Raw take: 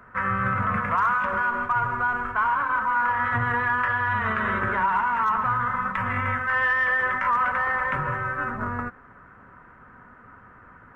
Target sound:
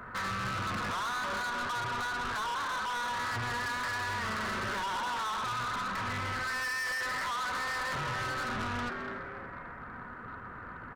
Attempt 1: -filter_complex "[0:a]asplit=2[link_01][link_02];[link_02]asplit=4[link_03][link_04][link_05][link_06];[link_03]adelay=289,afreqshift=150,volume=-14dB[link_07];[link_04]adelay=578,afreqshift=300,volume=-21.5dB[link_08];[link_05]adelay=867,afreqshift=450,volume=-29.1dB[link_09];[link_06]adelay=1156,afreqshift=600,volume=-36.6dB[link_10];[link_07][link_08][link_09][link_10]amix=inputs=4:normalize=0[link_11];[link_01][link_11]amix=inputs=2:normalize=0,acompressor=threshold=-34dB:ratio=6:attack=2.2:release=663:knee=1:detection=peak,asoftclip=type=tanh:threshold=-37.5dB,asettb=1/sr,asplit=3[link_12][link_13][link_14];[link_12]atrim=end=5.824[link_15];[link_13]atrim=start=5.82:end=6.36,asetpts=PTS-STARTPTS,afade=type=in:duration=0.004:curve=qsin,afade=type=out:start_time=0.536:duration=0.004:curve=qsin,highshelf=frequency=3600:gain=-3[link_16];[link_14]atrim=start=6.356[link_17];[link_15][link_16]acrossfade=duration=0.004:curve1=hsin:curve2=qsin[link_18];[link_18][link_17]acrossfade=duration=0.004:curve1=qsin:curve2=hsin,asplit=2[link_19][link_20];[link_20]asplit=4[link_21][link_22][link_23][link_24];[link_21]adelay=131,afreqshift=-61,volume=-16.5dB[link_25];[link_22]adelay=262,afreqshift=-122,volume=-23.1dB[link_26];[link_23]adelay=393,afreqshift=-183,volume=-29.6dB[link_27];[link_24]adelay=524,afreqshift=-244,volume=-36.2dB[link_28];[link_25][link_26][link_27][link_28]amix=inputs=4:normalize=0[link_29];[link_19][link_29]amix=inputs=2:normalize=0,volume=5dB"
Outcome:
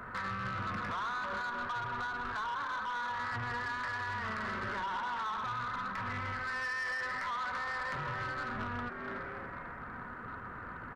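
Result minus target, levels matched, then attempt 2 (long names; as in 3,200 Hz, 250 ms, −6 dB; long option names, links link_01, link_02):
downward compressor: peak gain reduction +9 dB
-filter_complex "[0:a]asplit=2[link_01][link_02];[link_02]asplit=4[link_03][link_04][link_05][link_06];[link_03]adelay=289,afreqshift=150,volume=-14dB[link_07];[link_04]adelay=578,afreqshift=300,volume=-21.5dB[link_08];[link_05]adelay=867,afreqshift=450,volume=-29.1dB[link_09];[link_06]adelay=1156,afreqshift=600,volume=-36.6dB[link_10];[link_07][link_08][link_09][link_10]amix=inputs=4:normalize=0[link_11];[link_01][link_11]amix=inputs=2:normalize=0,acompressor=threshold=-23dB:ratio=6:attack=2.2:release=663:knee=1:detection=peak,asoftclip=type=tanh:threshold=-37.5dB,asettb=1/sr,asplit=3[link_12][link_13][link_14];[link_12]atrim=end=5.824[link_15];[link_13]atrim=start=5.82:end=6.36,asetpts=PTS-STARTPTS,afade=type=in:duration=0.004:curve=qsin,afade=type=out:start_time=0.536:duration=0.004:curve=qsin,highshelf=frequency=3600:gain=-3[link_16];[link_14]atrim=start=6.356[link_17];[link_15][link_16]acrossfade=duration=0.004:curve1=hsin:curve2=qsin[link_18];[link_18][link_17]acrossfade=duration=0.004:curve1=qsin:curve2=hsin,asplit=2[link_19][link_20];[link_20]asplit=4[link_21][link_22][link_23][link_24];[link_21]adelay=131,afreqshift=-61,volume=-16.5dB[link_25];[link_22]adelay=262,afreqshift=-122,volume=-23.1dB[link_26];[link_23]adelay=393,afreqshift=-183,volume=-29.6dB[link_27];[link_24]adelay=524,afreqshift=-244,volume=-36.2dB[link_28];[link_25][link_26][link_27][link_28]amix=inputs=4:normalize=0[link_29];[link_19][link_29]amix=inputs=2:normalize=0,volume=5dB"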